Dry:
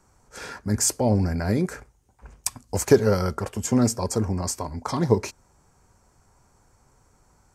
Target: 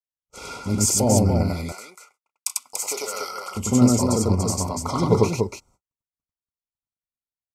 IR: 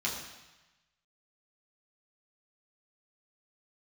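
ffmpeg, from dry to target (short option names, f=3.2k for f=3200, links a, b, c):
-filter_complex "[0:a]asettb=1/sr,asplit=3[a][b][c];[a]atrim=end=1.434[d];[b]atrim=start=1.43:end=3.55,asetpts=PTS-STARTPTS,afade=t=in:d=0.004:c=qsin,afade=t=out:st=2.116:d=0.004:c=qsin,highpass=1.2k[e];[c]atrim=start=3.546[f];[d][e]acrossfade=d=0.004:c1=hsin:c2=qsin[g];[g][f]acrossfade=d=0.004:c1=qsin:c2=hsin,agate=range=-55dB:threshold=-52dB:ratio=16:detection=peak,asuperstop=centerf=1700:order=20:qfactor=3.2,aecho=1:1:32.07|96.21|288.6:0.282|1|0.631"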